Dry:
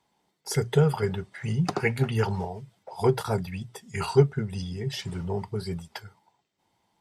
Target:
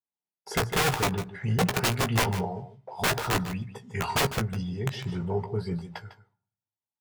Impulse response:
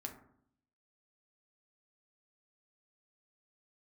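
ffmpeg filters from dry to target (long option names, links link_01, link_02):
-filter_complex "[0:a]agate=range=-33dB:threshold=-48dB:ratio=3:detection=peak,lowpass=frequency=1900:poles=1,aeval=exprs='(mod(10*val(0)+1,2)-1)/10':channel_layout=same,asplit=2[link_01][link_02];[link_02]adelay=17,volume=-8dB[link_03];[link_01][link_03]amix=inputs=2:normalize=0,aecho=1:1:151:0.237,asplit=2[link_04][link_05];[1:a]atrim=start_sample=2205[link_06];[link_05][link_06]afir=irnorm=-1:irlink=0,volume=-13dB[link_07];[link_04][link_07]amix=inputs=2:normalize=0"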